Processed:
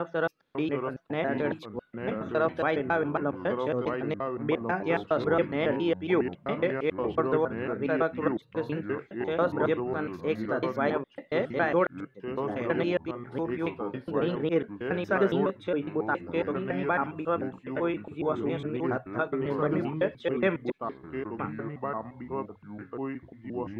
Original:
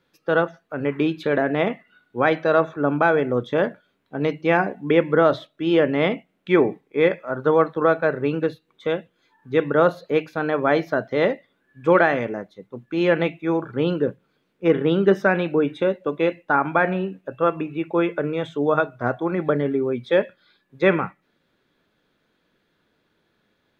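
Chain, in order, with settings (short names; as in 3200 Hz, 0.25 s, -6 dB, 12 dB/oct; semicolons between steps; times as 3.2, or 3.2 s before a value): slices in reverse order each 0.138 s, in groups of 4; echoes that change speed 0.548 s, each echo -4 st, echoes 2, each echo -6 dB; gain -8.5 dB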